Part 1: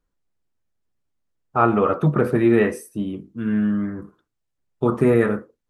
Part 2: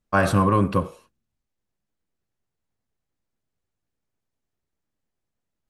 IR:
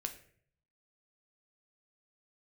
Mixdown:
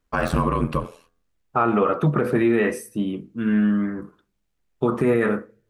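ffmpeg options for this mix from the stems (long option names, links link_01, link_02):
-filter_complex "[0:a]equalizer=frequency=100:width_type=o:width=0.37:gain=-10,volume=1dB,asplit=2[link_01][link_02];[link_02]volume=-18dB[link_03];[1:a]deesser=0.65,bandreject=frequency=230.5:width_type=h:width=4,bandreject=frequency=461:width_type=h:width=4,bandreject=frequency=691.5:width_type=h:width=4,bandreject=frequency=922:width_type=h:width=4,bandreject=frequency=1152.5:width_type=h:width=4,bandreject=frequency=1383:width_type=h:width=4,bandreject=frequency=1613.5:width_type=h:width=4,aeval=exprs='val(0)*sin(2*PI*42*n/s)':channel_layout=same,volume=2.5dB[link_04];[2:a]atrim=start_sample=2205[link_05];[link_03][link_05]afir=irnorm=-1:irlink=0[link_06];[link_01][link_04][link_06]amix=inputs=3:normalize=0,equalizer=frequency=2500:width=0.92:gain=3.5,alimiter=limit=-10.5dB:level=0:latency=1:release=90"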